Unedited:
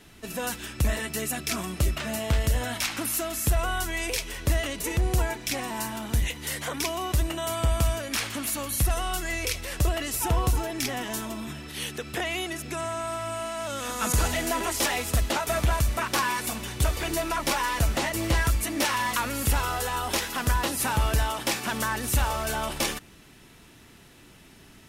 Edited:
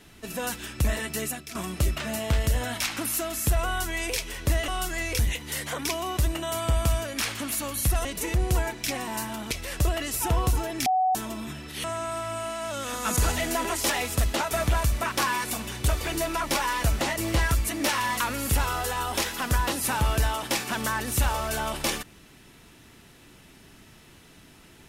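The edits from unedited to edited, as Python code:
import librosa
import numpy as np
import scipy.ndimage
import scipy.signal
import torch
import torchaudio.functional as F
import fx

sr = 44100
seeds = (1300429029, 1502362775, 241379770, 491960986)

y = fx.edit(x, sr, fx.fade_out_to(start_s=1.27, length_s=0.28, curve='qua', floor_db=-12.5),
    fx.swap(start_s=4.68, length_s=1.46, other_s=9.0, other_length_s=0.51),
    fx.bleep(start_s=10.86, length_s=0.29, hz=747.0, db=-19.5),
    fx.cut(start_s=11.84, length_s=0.96), tone=tone)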